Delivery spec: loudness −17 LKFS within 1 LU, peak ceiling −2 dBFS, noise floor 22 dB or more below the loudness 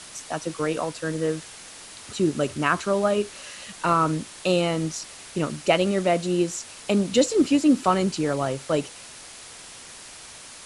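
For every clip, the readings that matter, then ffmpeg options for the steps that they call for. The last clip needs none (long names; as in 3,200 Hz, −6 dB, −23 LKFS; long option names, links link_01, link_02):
background noise floor −43 dBFS; target noise floor −46 dBFS; integrated loudness −24.0 LKFS; sample peak −6.0 dBFS; target loudness −17.0 LKFS
→ -af "afftdn=noise_reduction=6:noise_floor=-43"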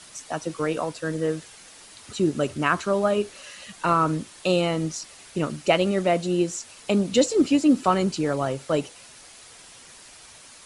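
background noise floor −48 dBFS; integrated loudness −24.5 LKFS; sample peak −6.0 dBFS; target loudness −17.0 LKFS
→ -af "volume=7.5dB,alimiter=limit=-2dB:level=0:latency=1"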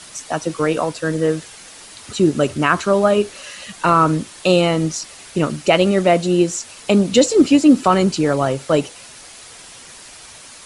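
integrated loudness −17.0 LKFS; sample peak −2.0 dBFS; background noise floor −40 dBFS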